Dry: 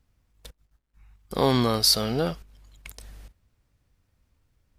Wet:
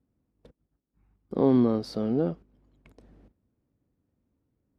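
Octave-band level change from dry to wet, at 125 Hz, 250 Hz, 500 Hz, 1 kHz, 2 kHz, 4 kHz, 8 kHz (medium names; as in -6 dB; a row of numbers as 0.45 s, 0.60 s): -4.0 dB, +3.5 dB, -0.5 dB, -8.5 dB, under -10 dB, -23.5 dB, under -25 dB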